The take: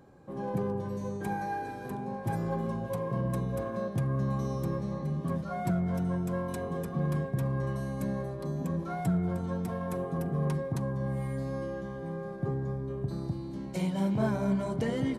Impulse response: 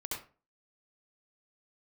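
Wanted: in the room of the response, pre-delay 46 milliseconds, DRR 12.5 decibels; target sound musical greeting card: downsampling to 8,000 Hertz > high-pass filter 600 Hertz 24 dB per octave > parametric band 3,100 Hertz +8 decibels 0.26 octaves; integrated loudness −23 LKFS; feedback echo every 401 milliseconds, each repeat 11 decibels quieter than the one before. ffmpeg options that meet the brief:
-filter_complex "[0:a]aecho=1:1:401|802|1203:0.282|0.0789|0.0221,asplit=2[link_01][link_02];[1:a]atrim=start_sample=2205,adelay=46[link_03];[link_02][link_03]afir=irnorm=-1:irlink=0,volume=-14dB[link_04];[link_01][link_04]amix=inputs=2:normalize=0,aresample=8000,aresample=44100,highpass=frequency=600:width=0.5412,highpass=frequency=600:width=1.3066,equalizer=frequency=3100:width_type=o:width=0.26:gain=8,volume=18dB"

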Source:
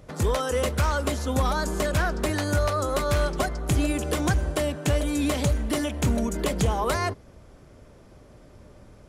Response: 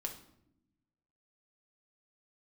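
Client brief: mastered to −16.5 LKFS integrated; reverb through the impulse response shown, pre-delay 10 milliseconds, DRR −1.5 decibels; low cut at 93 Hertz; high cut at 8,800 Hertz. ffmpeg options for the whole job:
-filter_complex "[0:a]highpass=93,lowpass=8800,asplit=2[link_01][link_02];[1:a]atrim=start_sample=2205,adelay=10[link_03];[link_02][link_03]afir=irnorm=-1:irlink=0,volume=2.5dB[link_04];[link_01][link_04]amix=inputs=2:normalize=0,volume=5.5dB"

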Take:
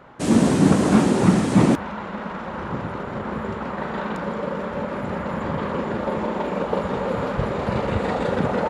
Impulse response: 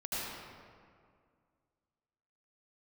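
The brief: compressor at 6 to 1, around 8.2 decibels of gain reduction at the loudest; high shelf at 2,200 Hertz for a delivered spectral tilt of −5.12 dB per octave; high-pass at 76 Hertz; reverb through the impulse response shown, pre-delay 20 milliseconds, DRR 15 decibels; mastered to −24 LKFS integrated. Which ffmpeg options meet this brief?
-filter_complex "[0:a]highpass=76,highshelf=frequency=2200:gain=8.5,acompressor=threshold=-19dB:ratio=6,asplit=2[link_01][link_02];[1:a]atrim=start_sample=2205,adelay=20[link_03];[link_02][link_03]afir=irnorm=-1:irlink=0,volume=-19.5dB[link_04];[link_01][link_04]amix=inputs=2:normalize=0,volume=1.5dB"

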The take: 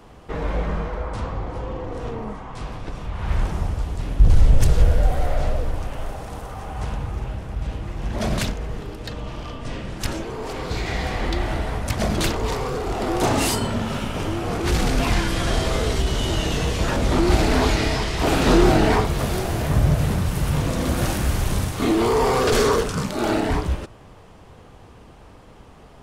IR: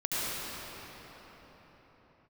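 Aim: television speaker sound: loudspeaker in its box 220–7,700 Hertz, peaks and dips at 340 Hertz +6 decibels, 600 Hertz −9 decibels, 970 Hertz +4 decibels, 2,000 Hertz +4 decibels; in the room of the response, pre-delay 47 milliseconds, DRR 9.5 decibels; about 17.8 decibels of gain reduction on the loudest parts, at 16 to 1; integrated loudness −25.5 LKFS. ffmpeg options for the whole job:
-filter_complex "[0:a]acompressor=threshold=-26dB:ratio=16,asplit=2[link_01][link_02];[1:a]atrim=start_sample=2205,adelay=47[link_03];[link_02][link_03]afir=irnorm=-1:irlink=0,volume=-19.5dB[link_04];[link_01][link_04]amix=inputs=2:normalize=0,highpass=frequency=220:width=0.5412,highpass=frequency=220:width=1.3066,equalizer=frequency=340:width_type=q:width=4:gain=6,equalizer=frequency=600:width_type=q:width=4:gain=-9,equalizer=frequency=970:width_type=q:width=4:gain=4,equalizer=frequency=2000:width_type=q:width=4:gain=4,lowpass=frequency=7700:width=0.5412,lowpass=frequency=7700:width=1.3066,volume=7dB"

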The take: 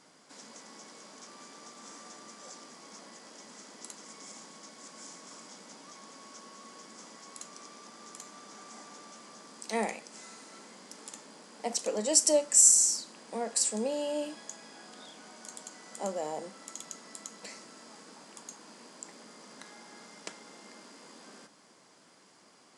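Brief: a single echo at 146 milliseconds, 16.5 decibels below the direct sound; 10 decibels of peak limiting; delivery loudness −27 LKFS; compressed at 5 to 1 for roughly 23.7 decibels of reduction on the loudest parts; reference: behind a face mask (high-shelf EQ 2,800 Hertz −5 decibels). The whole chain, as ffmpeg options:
ffmpeg -i in.wav -af "acompressor=threshold=-44dB:ratio=5,alimiter=level_in=12dB:limit=-24dB:level=0:latency=1,volume=-12dB,highshelf=frequency=2800:gain=-5,aecho=1:1:146:0.15,volume=24dB" out.wav

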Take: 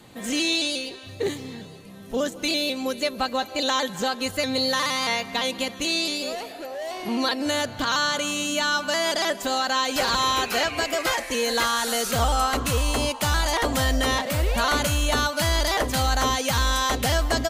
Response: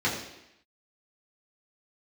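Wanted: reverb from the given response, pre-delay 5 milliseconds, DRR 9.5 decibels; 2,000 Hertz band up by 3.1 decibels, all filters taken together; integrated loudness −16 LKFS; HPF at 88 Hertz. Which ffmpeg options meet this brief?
-filter_complex "[0:a]highpass=88,equalizer=frequency=2000:width_type=o:gain=4,asplit=2[link_01][link_02];[1:a]atrim=start_sample=2205,adelay=5[link_03];[link_02][link_03]afir=irnorm=-1:irlink=0,volume=-21.5dB[link_04];[link_01][link_04]amix=inputs=2:normalize=0,volume=6.5dB"

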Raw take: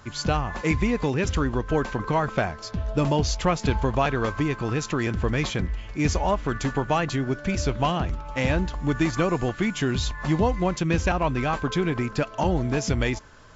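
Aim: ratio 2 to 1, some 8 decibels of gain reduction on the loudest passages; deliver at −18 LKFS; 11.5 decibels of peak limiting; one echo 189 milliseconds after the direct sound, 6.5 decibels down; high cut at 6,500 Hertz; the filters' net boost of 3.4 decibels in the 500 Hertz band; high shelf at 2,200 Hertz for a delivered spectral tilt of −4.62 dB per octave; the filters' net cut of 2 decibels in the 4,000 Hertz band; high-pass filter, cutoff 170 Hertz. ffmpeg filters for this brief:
ffmpeg -i in.wav -af "highpass=170,lowpass=6500,equalizer=frequency=500:width_type=o:gain=4,highshelf=frequency=2200:gain=7,equalizer=frequency=4000:width_type=o:gain=-9,acompressor=threshold=-31dB:ratio=2,alimiter=limit=-24dB:level=0:latency=1,aecho=1:1:189:0.473,volume=16dB" out.wav

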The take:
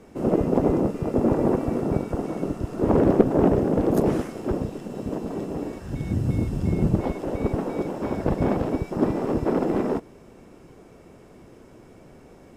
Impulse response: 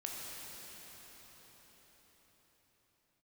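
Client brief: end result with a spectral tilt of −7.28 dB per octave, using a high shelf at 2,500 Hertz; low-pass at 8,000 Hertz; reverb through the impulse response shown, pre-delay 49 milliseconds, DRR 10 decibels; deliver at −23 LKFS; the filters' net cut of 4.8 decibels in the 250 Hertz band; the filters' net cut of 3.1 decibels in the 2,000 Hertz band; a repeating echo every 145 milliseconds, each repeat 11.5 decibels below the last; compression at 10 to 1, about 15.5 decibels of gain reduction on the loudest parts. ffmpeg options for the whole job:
-filter_complex "[0:a]lowpass=8000,equalizer=frequency=250:width_type=o:gain=-6.5,equalizer=frequency=2000:width_type=o:gain=-7,highshelf=frequency=2500:gain=6.5,acompressor=threshold=-30dB:ratio=10,aecho=1:1:145|290|435:0.266|0.0718|0.0194,asplit=2[link_01][link_02];[1:a]atrim=start_sample=2205,adelay=49[link_03];[link_02][link_03]afir=irnorm=-1:irlink=0,volume=-11dB[link_04];[link_01][link_04]amix=inputs=2:normalize=0,volume=12dB"

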